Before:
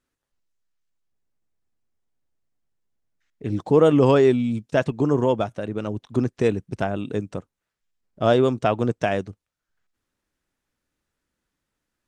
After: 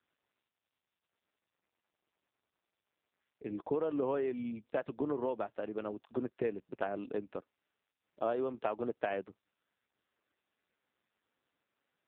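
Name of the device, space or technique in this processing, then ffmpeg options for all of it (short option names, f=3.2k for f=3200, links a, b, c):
voicemail: -af "highpass=310,lowpass=2.9k,acompressor=threshold=-22dB:ratio=10,volume=-6.5dB" -ar 8000 -c:a libopencore_amrnb -b:a 5900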